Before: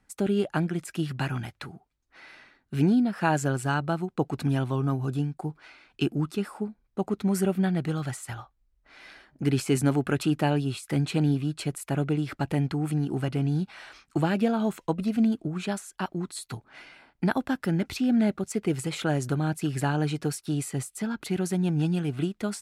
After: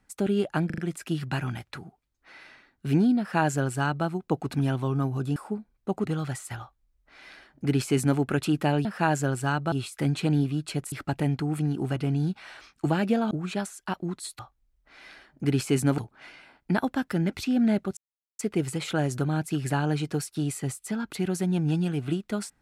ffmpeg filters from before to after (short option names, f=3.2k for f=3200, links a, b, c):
-filter_complex "[0:a]asplit=13[a][b][c][d][e][f][g][h][i][j][k][l][m];[a]atrim=end=0.702[n];[b]atrim=start=0.658:end=0.702[o];[c]atrim=start=0.658:end=0.702[p];[d]atrim=start=0.658:end=5.242[q];[e]atrim=start=6.458:end=7.152[r];[f]atrim=start=7.828:end=10.632[s];[g]atrim=start=3.068:end=3.942[t];[h]atrim=start=10.628:end=11.832[u];[i]atrim=start=12.238:end=14.632[v];[j]atrim=start=15.428:end=16.512[w];[k]atrim=start=8.378:end=9.972[x];[l]atrim=start=16.508:end=18.5,asetpts=PTS-STARTPTS,afade=t=out:st=1.988:d=0.004:c=hsin,apad=pad_dur=0.42[y];[m]atrim=start=18.5,asetpts=PTS-STARTPTS,afade=t=in:d=0.004:c=hsin[z];[n][o]acrossfade=d=0.004:c1=hsin:c2=hsin[aa];[aa][p]acrossfade=d=0.004:c1=hsin:c2=hsin[ab];[ab][q]acrossfade=d=0.004:c1=hsin:c2=hsin[ac];[ac][r]acrossfade=d=0.004:c1=hsin:c2=hsin[ad];[ad][s]acrossfade=d=0.004:c1=hsin:c2=hsin[ae];[ae][t]acrossfade=d=0.004:c1=hsin:c2=hsin[af];[af][u]acrossfade=d=0.004:c1=hsin:c2=hsin[ag];[ag][v]acrossfade=d=0.004:c1=hsin:c2=hsin[ah];[ah][w]acrossfade=d=0.004:c1=hsin:c2=hsin[ai];[ai][x]acrossfade=d=0.004:c1=hsin:c2=hsin[aj];[y][z]concat=n=2:v=0:a=1[ak];[aj][ak]acrossfade=d=0.004:c1=hsin:c2=hsin"